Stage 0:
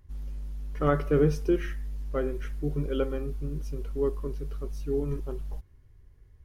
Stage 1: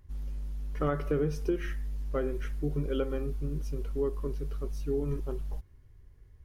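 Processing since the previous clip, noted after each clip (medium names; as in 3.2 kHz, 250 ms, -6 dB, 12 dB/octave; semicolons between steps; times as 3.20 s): compression 6:1, threshold -25 dBFS, peak gain reduction 7.5 dB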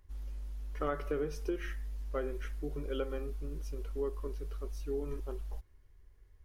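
peaking EQ 140 Hz -13 dB 1.7 oct; trim -2 dB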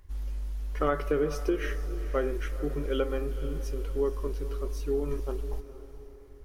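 echo that smears into a reverb 470 ms, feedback 45%, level -13.5 dB; trim +7.5 dB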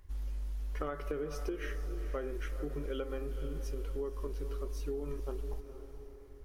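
compression, threshold -31 dBFS, peak gain reduction 10 dB; trim -2.5 dB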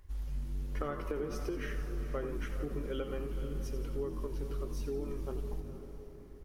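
frequency-shifting echo 86 ms, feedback 61%, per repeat -95 Hz, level -10 dB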